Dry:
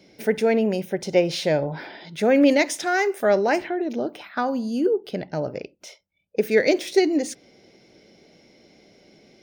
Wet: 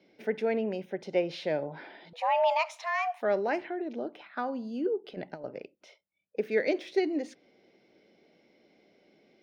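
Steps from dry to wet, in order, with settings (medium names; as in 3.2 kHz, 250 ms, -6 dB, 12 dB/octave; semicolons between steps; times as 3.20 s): three-band isolator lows -12 dB, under 180 Hz, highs -19 dB, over 4.2 kHz; 2.13–3.22 s: frequency shift +330 Hz; 5.04–5.44 s: compressor with a negative ratio -30 dBFS, ratio -0.5; trim -8.5 dB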